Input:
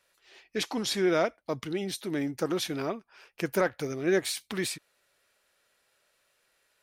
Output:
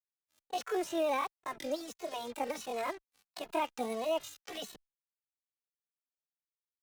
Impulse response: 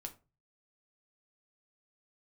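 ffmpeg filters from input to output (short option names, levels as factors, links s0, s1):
-filter_complex "[0:a]acrossover=split=8000[s0][s1];[s1]acompressor=threshold=0.00398:ratio=4:attack=1:release=60[s2];[s0][s2]amix=inputs=2:normalize=0,agate=range=0.0224:threshold=0.00112:ratio=3:detection=peak,acrossover=split=120|2200[s3][s4][s5];[s5]acompressor=threshold=0.00562:ratio=20[s6];[s3][s4][s6]amix=inputs=3:normalize=0,alimiter=limit=0.0841:level=0:latency=1:release=109,acrusher=bits=6:mix=0:aa=0.5,asetrate=74167,aresample=44100,atempo=0.594604,asplit=2[s7][s8];[s8]adelay=2.3,afreqshift=-1.5[s9];[s7][s9]amix=inputs=2:normalize=1"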